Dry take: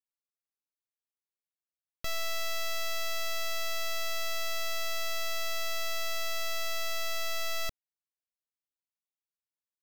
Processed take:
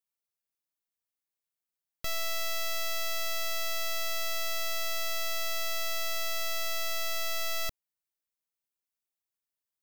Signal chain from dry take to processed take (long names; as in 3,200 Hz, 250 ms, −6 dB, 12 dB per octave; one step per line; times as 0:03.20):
high-shelf EQ 9,500 Hz +7 dB